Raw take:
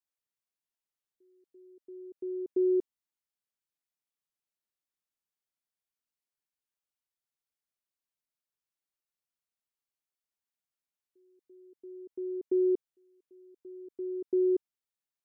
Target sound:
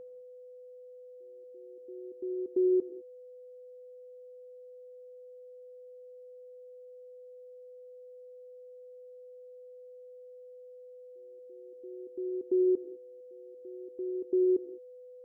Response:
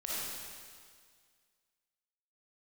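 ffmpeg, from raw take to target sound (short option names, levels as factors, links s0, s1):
-filter_complex "[0:a]aeval=exprs='val(0)+0.00631*sin(2*PI*500*n/s)':c=same,asplit=2[s0][s1];[1:a]atrim=start_sample=2205,afade=t=out:st=0.24:d=0.01,atrim=end_sample=11025,adelay=21[s2];[s1][s2]afir=irnorm=-1:irlink=0,volume=0.237[s3];[s0][s3]amix=inputs=2:normalize=0"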